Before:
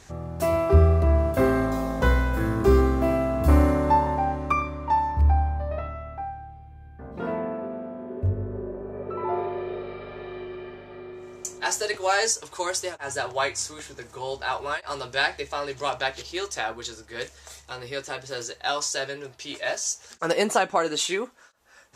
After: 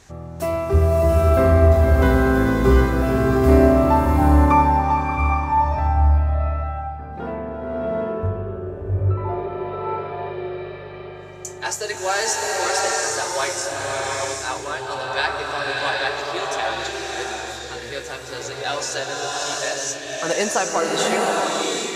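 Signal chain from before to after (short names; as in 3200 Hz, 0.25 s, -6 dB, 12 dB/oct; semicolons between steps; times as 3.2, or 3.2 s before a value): bloom reverb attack 0.76 s, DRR -3 dB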